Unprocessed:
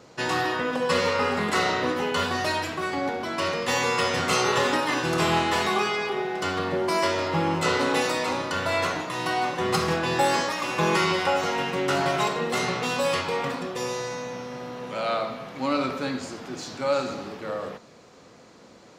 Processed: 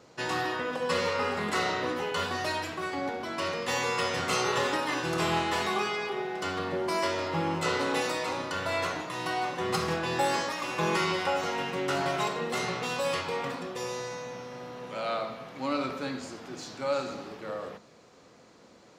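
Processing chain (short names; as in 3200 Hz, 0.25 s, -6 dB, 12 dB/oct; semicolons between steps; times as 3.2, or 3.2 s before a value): notches 50/100/150/200/250 Hz; gain -5 dB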